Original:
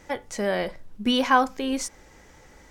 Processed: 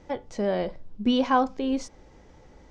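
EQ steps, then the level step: air absorption 160 m; bell 1800 Hz -9.5 dB 1.5 oct; +1.5 dB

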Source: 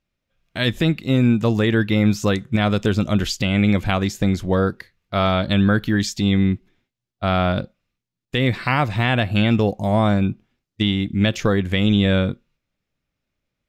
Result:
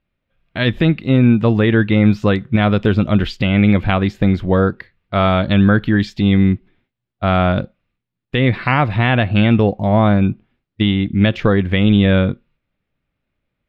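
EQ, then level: air absorption 440 m; high shelf 2700 Hz +8.5 dB; +5.0 dB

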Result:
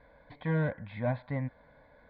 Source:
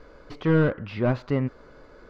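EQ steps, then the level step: HPF 93 Hz 6 dB/oct; steep low-pass 3700 Hz 48 dB/oct; fixed phaser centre 1900 Hz, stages 8; -3.5 dB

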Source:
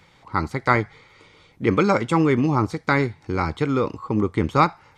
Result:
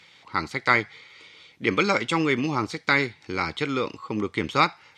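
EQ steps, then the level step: weighting filter D; -4.5 dB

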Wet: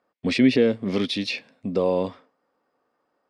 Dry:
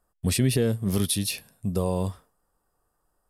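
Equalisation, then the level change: speaker cabinet 250–4800 Hz, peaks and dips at 260 Hz +10 dB, 520 Hz +6 dB, 2200 Hz +10 dB; +3.0 dB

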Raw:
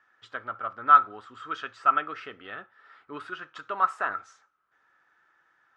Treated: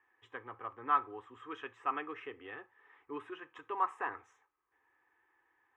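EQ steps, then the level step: high shelf 2100 Hz -9.5 dB; fixed phaser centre 930 Hz, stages 8; 0.0 dB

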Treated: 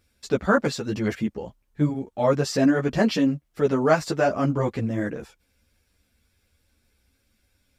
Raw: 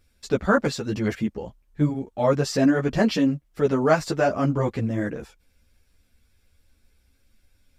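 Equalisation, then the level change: HPF 72 Hz 6 dB/oct; 0.0 dB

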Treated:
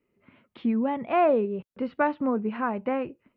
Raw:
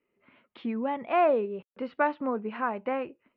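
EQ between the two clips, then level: bell 110 Hz +4.5 dB 2.6 oct; low shelf 210 Hz +9 dB; 0.0 dB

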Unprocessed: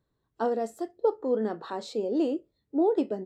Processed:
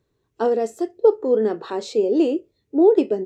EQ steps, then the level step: fifteen-band EQ 100 Hz +5 dB, 400 Hz +9 dB, 2500 Hz +8 dB, 6300 Hz +7 dB; +3.0 dB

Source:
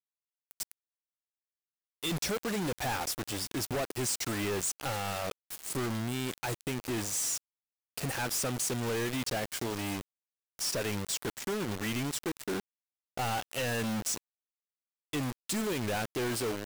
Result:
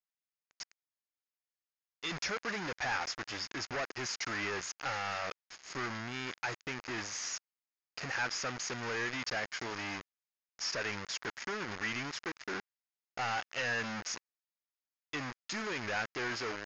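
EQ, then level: low shelf 380 Hz -5 dB; dynamic EQ 1500 Hz, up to +5 dB, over -50 dBFS, Q 0.73; rippled Chebyshev low-pass 6800 Hz, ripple 6 dB; 0.0 dB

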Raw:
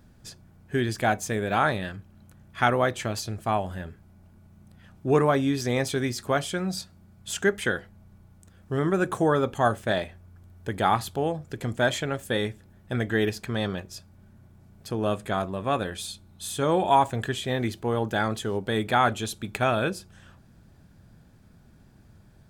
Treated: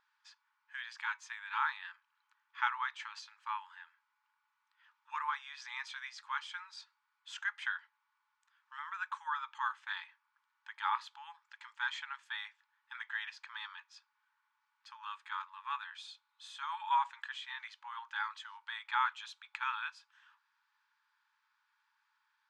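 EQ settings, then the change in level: brick-wall FIR band-pass 840–12000 Hz; air absorption 180 m; -6.5 dB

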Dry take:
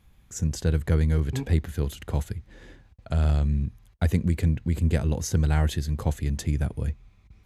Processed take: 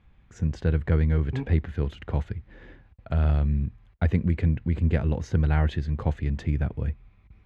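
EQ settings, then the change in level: Chebyshev low-pass 2300 Hz, order 2; +1.0 dB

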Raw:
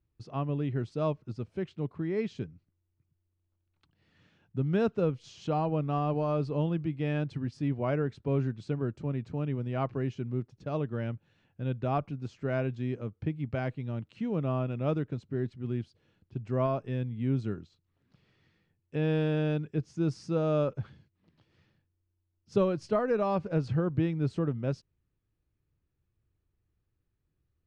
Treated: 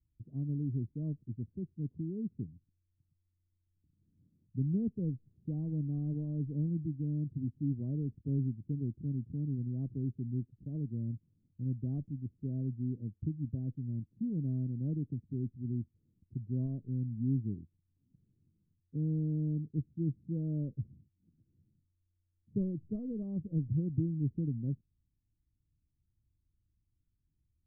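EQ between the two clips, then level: ladder low-pass 330 Hz, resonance 40%; air absorption 380 m; low shelf 150 Hz +12 dB; -2.0 dB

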